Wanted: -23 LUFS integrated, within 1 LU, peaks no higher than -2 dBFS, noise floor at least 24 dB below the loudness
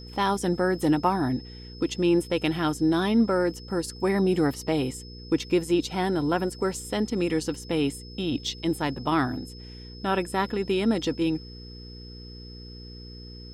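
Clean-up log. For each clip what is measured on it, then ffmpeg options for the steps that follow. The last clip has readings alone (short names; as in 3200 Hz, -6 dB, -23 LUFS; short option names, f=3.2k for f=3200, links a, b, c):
hum 60 Hz; harmonics up to 480 Hz; hum level -42 dBFS; steady tone 5200 Hz; tone level -46 dBFS; loudness -26.5 LUFS; peak -10.0 dBFS; loudness target -23.0 LUFS
-> -af "bandreject=f=60:t=h:w=4,bandreject=f=120:t=h:w=4,bandreject=f=180:t=h:w=4,bandreject=f=240:t=h:w=4,bandreject=f=300:t=h:w=4,bandreject=f=360:t=h:w=4,bandreject=f=420:t=h:w=4,bandreject=f=480:t=h:w=4"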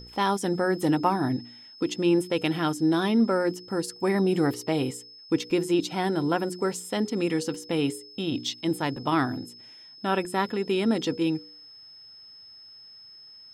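hum none; steady tone 5200 Hz; tone level -46 dBFS
-> -af "bandreject=f=5.2k:w=30"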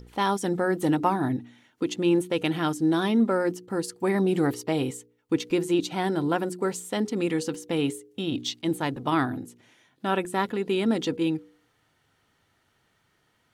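steady tone none; loudness -26.5 LUFS; peak -9.5 dBFS; loudness target -23.0 LUFS
-> -af "volume=3.5dB"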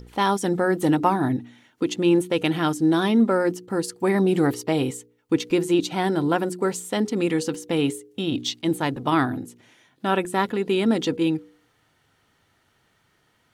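loudness -23.0 LUFS; peak -6.0 dBFS; noise floor -66 dBFS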